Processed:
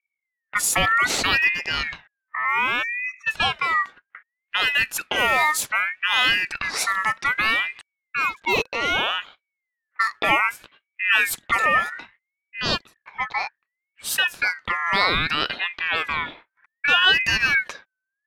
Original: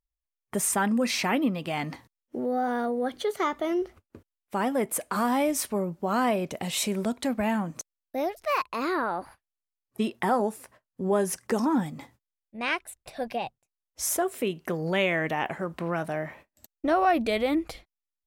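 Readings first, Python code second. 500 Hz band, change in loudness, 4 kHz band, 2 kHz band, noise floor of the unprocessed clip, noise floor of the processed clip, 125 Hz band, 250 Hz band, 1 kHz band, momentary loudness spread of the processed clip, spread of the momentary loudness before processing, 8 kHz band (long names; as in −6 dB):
−5.5 dB, +7.0 dB, +14.5 dB, +14.5 dB, below −85 dBFS, −84 dBFS, −2.5 dB, −11.0 dB, +4.5 dB, 11 LU, 12 LU, +3.5 dB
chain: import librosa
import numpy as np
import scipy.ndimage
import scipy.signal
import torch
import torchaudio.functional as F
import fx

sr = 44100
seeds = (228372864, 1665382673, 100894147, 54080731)

y = fx.spec_erase(x, sr, start_s=2.83, length_s=0.44, low_hz=390.0, high_hz=3400.0)
y = fx.env_lowpass(y, sr, base_hz=530.0, full_db=-23.5)
y = fx.ring_lfo(y, sr, carrier_hz=1900.0, swing_pct=20, hz=0.64)
y = F.gain(torch.from_numpy(y), 8.0).numpy()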